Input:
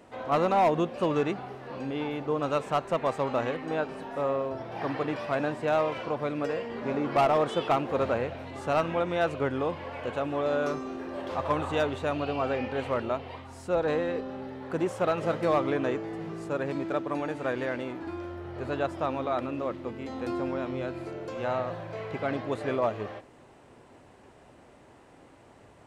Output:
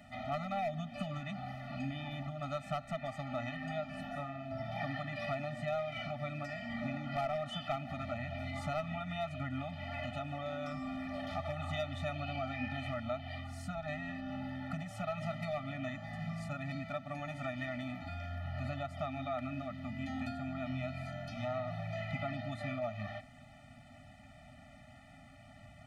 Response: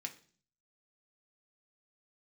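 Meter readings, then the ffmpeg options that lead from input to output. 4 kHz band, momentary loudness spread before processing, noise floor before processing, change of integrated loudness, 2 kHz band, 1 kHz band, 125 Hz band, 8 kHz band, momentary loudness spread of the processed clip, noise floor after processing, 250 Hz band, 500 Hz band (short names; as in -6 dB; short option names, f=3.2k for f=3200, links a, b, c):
-5.0 dB, 11 LU, -55 dBFS, -10.0 dB, -6.0 dB, -11.0 dB, -2.0 dB, n/a, 6 LU, -56 dBFS, -9.0 dB, -12.5 dB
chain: -af "acompressor=threshold=-32dB:ratio=6,equalizer=f=250:t=o:w=1:g=-3,equalizer=f=1k:t=o:w=1:g=-10,equalizer=f=2k:t=o:w=1:g=4,equalizer=f=8k:t=o:w=1:g=-5,afftfilt=real='re*eq(mod(floor(b*sr/1024/290),2),0)':imag='im*eq(mod(floor(b*sr/1024/290),2),0)':win_size=1024:overlap=0.75,volume=4dB"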